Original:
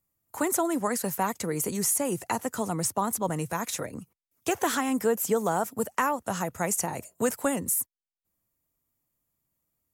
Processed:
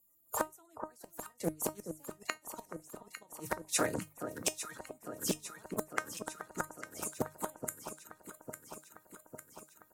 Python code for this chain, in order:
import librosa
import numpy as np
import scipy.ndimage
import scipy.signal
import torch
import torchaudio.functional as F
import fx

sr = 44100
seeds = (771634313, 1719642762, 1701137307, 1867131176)

p1 = fx.spec_quant(x, sr, step_db=30)
p2 = fx.peak_eq(p1, sr, hz=510.0, db=3.5, octaves=2.9)
p3 = fx.gate_flip(p2, sr, shuts_db=-18.0, range_db=-39)
p4 = fx.high_shelf(p3, sr, hz=2200.0, db=10.5)
p5 = fx.hum_notches(p4, sr, base_hz=50, count=3)
p6 = fx.comb_fb(p5, sr, f0_hz=310.0, decay_s=0.18, harmonics='all', damping=0.0, mix_pct=70)
p7 = p6 + fx.echo_alternate(p6, sr, ms=426, hz=1300.0, feedback_pct=80, wet_db=-8.0, dry=0)
p8 = fx.doppler_dist(p7, sr, depth_ms=0.38)
y = F.gain(torch.from_numpy(p8), 7.5).numpy()